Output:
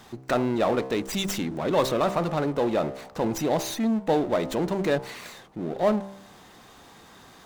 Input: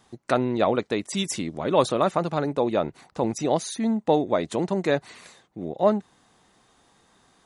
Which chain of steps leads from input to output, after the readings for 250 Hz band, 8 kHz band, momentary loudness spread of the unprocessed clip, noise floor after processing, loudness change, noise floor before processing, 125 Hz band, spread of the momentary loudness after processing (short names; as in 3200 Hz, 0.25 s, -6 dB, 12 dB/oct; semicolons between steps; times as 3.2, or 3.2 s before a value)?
-0.5 dB, -1.5 dB, 7 LU, -51 dBFS, -1.0 dB, -62 dBFS, -0.5 dB, 8 LU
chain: de-hum 65.44 Hz, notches 19; power-law curve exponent 0.7; running maximum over 3 samples; gain -5 dB